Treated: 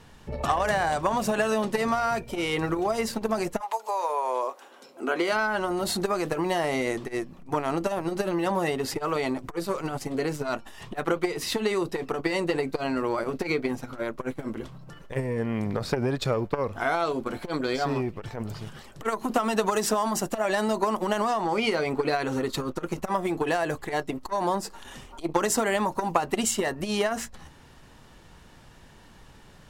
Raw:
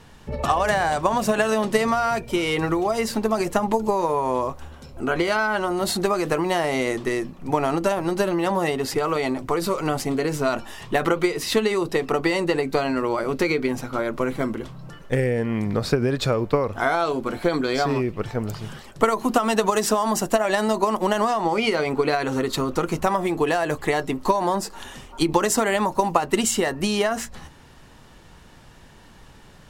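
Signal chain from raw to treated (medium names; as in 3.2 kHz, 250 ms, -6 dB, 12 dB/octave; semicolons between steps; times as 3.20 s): 3.59–5.31 s: high-pass 790 Hz -> 210 Hz 24 dB/octave; transformer saturation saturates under 680 Hz; trim -3 dB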